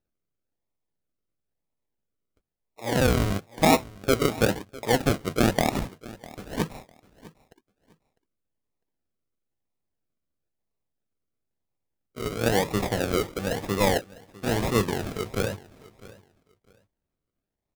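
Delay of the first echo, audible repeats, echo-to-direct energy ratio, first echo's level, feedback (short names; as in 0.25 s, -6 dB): 0.652 s, 2, -20.0 dB, -20.0 dB, 22%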